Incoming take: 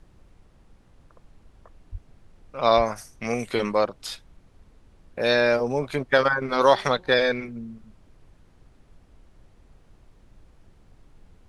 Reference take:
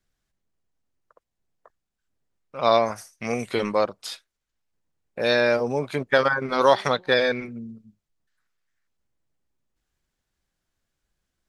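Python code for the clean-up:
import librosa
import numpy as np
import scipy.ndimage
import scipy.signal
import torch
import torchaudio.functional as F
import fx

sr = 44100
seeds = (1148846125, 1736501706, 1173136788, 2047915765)

y = fx.highpass(x, sr, hz=140.0, slope=24, at=(1.91, 2.03), fade=0.02)
y = fx.highpass(y, sr, hz=140.0, slope=24, at=(2.76, 2.88), fade=0.02)
y = fx.noise_reduce(y, sr, print_start_s=0.43, print_end_s=0.93, reduce_db=24.0)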